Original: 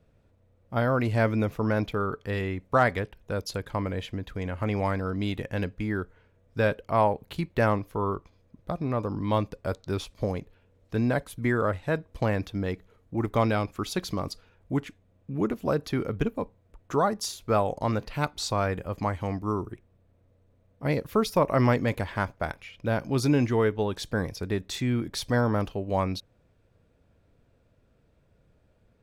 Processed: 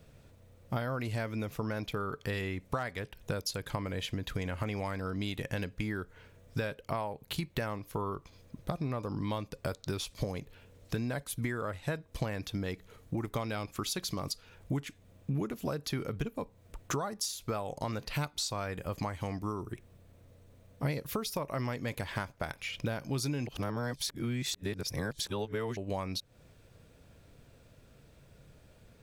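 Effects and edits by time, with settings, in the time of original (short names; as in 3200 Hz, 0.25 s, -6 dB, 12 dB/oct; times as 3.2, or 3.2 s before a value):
23.47–25.77 reverse
whole clip: high shelf 2700 Hz +11.5 dB; compressor 12:1, threshold -37 dBFS; bell 140 Hz +5 dB 0.3 oct; gain +5 dB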